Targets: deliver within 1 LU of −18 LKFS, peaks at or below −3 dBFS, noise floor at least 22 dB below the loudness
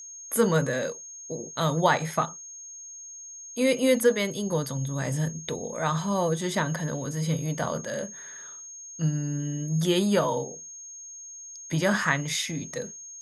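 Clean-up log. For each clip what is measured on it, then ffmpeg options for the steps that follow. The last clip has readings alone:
interfering tone 6,500 Hz; level of the tone −40 dBFS; integrated loudness −27.0 LKFS; sample peak −8.0 dBFS; target loudness −18.0 LKFS
→ -af "bandreject=frequency=6500:width=30"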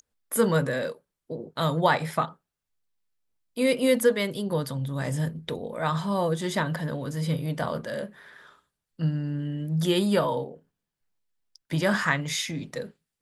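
interfering tone none found; integrated loudness −27.0 LKFS; sample peak −8.0 dBFS; target loudness −18.0 LKFS
→ -af "volume=9dB,alimiter=limit=-3dB:level=0:latency=1"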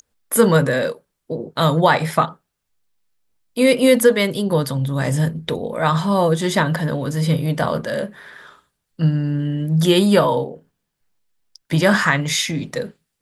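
integrated loudness −18.5 LKFS; sample peak −3.0 dBFS; background noise floor −77 dBFS

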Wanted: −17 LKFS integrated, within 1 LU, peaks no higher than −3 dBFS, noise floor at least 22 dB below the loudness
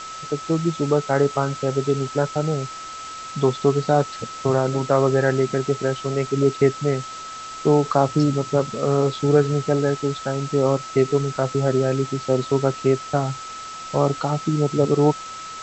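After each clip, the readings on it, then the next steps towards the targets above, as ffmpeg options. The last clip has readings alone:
interfering tone 1,300 Hz; level of the tone −33 dBFS; background noise floor −35 dBFS; target noise floor −44 dBFS; integrated loudness −21.5 LKFS; sample peak −4.0 dBFS; target loudness −17.0 LKFS
→ -af "bandreject=frequency=1300:width=30"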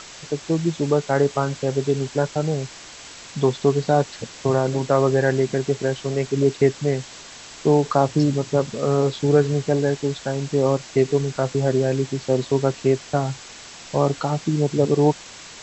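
interfering tone none found; background noise floor −41 dBFS; target noise floor −44 dBFS
→ -af "afftdn=noise_reduction=6:noise_floor=-41"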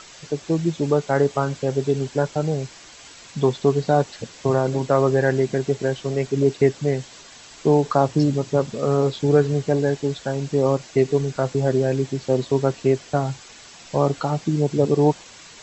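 background noise floor −45 dBFS; integrated loudness −21.5 LKFS; sample peak −4.0 dBFS; target loudness −17.0 LKFS
→ -af "volume=4.5dB,alimiter=limit=-3dB:level=0:latency=1"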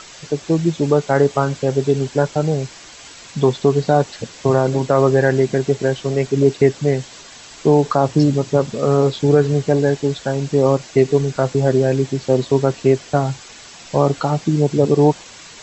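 integrated loudness −17.5 LKFS; sample peak −3.0 dBFS; background noise floor −40 dBFS

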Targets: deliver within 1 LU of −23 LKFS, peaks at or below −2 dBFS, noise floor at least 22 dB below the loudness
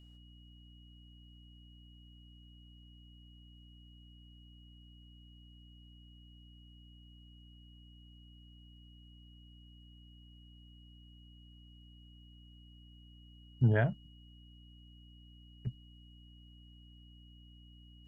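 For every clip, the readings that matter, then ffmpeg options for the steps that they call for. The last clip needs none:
mains hum 60 Hz; hum harmonics up to 300 Hz; level of the hum −55 dBFS; interfering tone 2,900 Hz; level of the tone −63 dBFS; integrated loudness −33.0 LKFS; sample peak −17.0 dBFS; target loudness −23.0 LKFS
→ -af "bandreject=frequency=60:width_type=h:width=4,bandreject=frequency=120:width_type=h:width=4,bandreject=frequency=180:width_type=h:width=4,bandreject=frequency=240:width_type=h:width=4,bandreject=frequency=300:width_type=h:width=4"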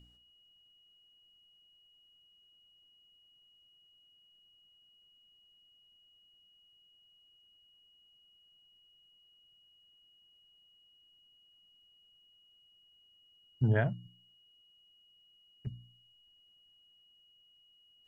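mains hum none found; interfering tone 2,900 Hz; level of the tone −63 dBFS
→ -af "bandreject=frequency=2900:width=30"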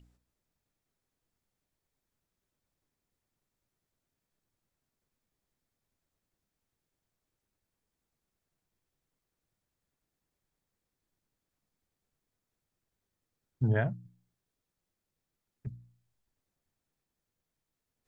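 interfering tone none found; integrated loudness −31.0 LKFS; sample peak −16.5 dBFS; target loudness −23.0 LKFS
→ -af "volume=8dB"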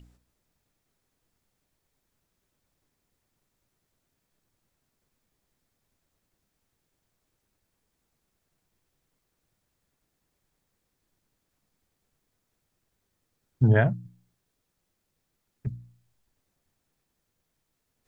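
integrated loudness −23.0 LKFS; sample peak −8.5 dBFS; background noise floor −79 dBFS

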